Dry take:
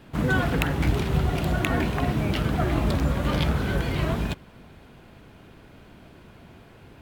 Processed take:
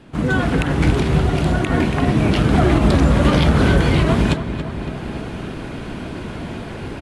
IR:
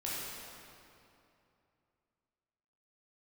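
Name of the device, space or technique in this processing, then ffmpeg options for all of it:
low-bitrate web radio: -filter_complex "[0:a]equalizer=frequency=290:width=1:gain=3.5,asplit=2[link_01][link_02];[link_02]adelay=280,lowpass=frequency=3500:poles=1,volume=-12dB,asplit=2[link_03][link_04];[link_04]adelay=280,lowpass=frequency=3500:poles=1,volume=0.54,asplit=2[link_05][link_06];[link_06]adelay=280,lowpass=frequency=3500:poles=1,volume=0.54,asplit=2[link_07][link_08];[link_08]adelay=280,lowpass=frequency=3500:poles=1,volume=0.54,asplit=2[link_09][link_10];[link_10]adelay=280,lowpass=frequency=3500:poles=1,volume=0.54,asplit=2[link_11][link_12];[link_12]adelay=280,lowpass=frequency=3500:poles=1,volume=0.54[link_13];[link_01][link_03][link_05][link_07][link_09][link_11][link_13]amix=inputs=7:normalize=0,dynaudnorm=framelen=200:gausssize=5:maxgain=15.5dB,alimiter=limit=-7dB:level=0:latency=1:release=108,volume=2.5dB" -ar 24000 -c:a aac -b:a 48k

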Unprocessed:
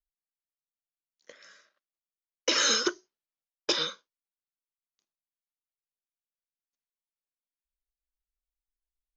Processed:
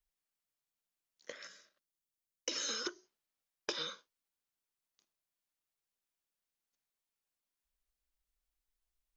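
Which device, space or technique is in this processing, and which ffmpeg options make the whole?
serial compression, leveller first: -filter_complex "[0:a]asettb=1/sr,asplit=3[link_01][link_02][link_03];[link_01]atrim=end=1.474[link_04];[link_02]atrim=start=1.47:end=2.69,asetpts=PTS-STARTPTS,afade=type=in:duration=0.004:curve=qsin,afade=type=out:start_time=1.216:duration=0.004:curve=qsin,equalizer=frequency=1200:width=0.4:gain=-10[link_05];[link_03]atrim=start=2.686[link_06];[link_04][link_05]acrossfade=duration=0.004:curve1=hsin:curve2=qsin[link_07];[link_07][link_06]acrossfade=duration=0.004:curve1=qsin:curve2=hsin,acompressor=threshold=-31dB:ratio=2.5,acompressor=threshold=-40dB:ratio=6,volume=4dB"

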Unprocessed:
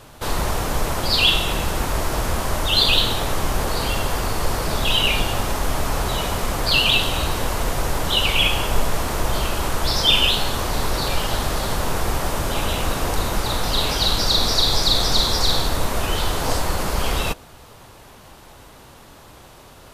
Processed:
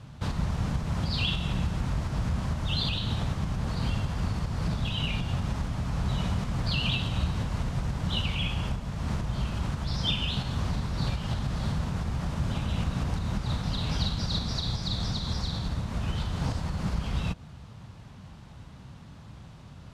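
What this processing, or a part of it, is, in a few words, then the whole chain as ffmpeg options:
jukebox: -af "lowpass=6000,lowshelf=frequency=260:width_type=q:width=1.5:gain=12.5,acompressor=threshold=-11dB:ratio=6,highpass=58,volume=-9dB"

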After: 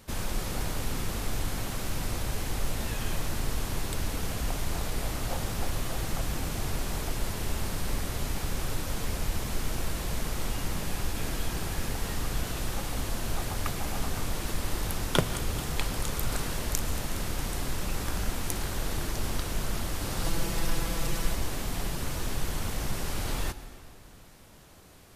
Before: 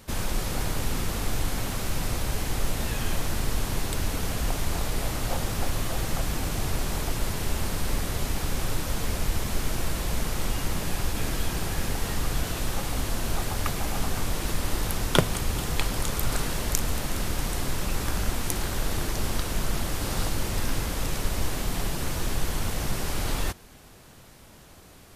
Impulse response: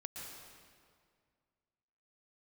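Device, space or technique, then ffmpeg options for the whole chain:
saturated reverb return: -filter_complex "[0:a]asettb=1/sr,asplit=3[link_01][link_02][link_03];[link_01]atrim=end=20.244[link_04];[link_02]atrim=start=20.24:end=21.35,asetpts=PTS-STARTPTS,afade=type=in:duration=0.004:curve=qsin,afade=type=out:start_time=1.106:duration=0.004:curve=qsin,aecho=1:1:6:0.8,atrim=end_sample=48951[link_05];[link_03]atrim=start=21.346[link_06];[link_04][link_05]acrossfade=duration=0.004:curve1=hsin:curve2=qsin[link_07];[link_07][link_06]acrossfade=duration=0.004:curve1=qsin:curve2=hsin,asplit=2[link_08][link_09];[1:a]atrim=start_sample=2205[link_10];[link_09][link_10]afir=irnorm=-1:irlink=0,asoftclip=type=tanh:threshold=-16dB,volume=-6.5dB[link_11];[link_08][link_11]amix=inputs=2:normalize=0,volume=-5.5dB"

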